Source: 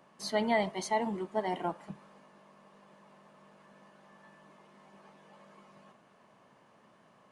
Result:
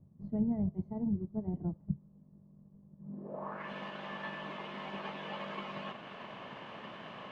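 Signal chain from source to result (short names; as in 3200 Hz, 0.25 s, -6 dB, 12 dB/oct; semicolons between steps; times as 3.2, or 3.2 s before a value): low-pass sweep 100 Hz -> 3100 Hz, 2.97–3.71; transient shaper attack +3 dB, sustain -3 dB; gain +14.5 dB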